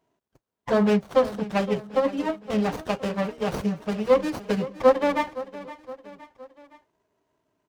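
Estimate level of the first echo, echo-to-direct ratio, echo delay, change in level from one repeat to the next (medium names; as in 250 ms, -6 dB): -16.0 dB, -14.5 dB, 516 ms, -5.5 dB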